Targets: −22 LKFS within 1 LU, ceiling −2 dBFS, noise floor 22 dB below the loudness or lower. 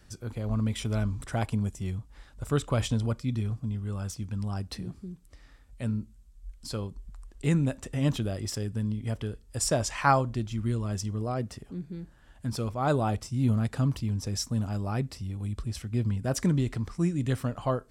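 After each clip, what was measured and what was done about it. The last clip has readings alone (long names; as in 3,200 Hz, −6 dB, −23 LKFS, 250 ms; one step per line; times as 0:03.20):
integrated loudness −30.5 LKFS; sample peak −9.0 dBFS; target loudness −22.0 LKFS
→ level +8.5 dB
brickwall limiter −2 dBFS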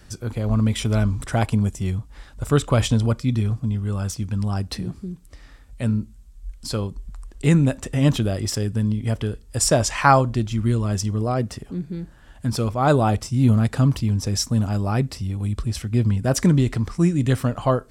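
integrated loudness −22.0 LKFS; sample peak −2.0 dBFS; background noise floor −48 dBFS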